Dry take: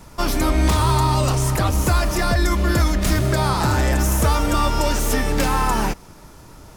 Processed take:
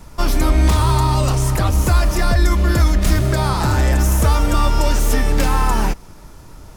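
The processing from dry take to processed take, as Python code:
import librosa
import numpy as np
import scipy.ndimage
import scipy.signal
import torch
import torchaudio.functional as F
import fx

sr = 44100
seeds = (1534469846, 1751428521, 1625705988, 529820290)

y = fx.low_shelf(x, sr, hz=66.0, db=9.0)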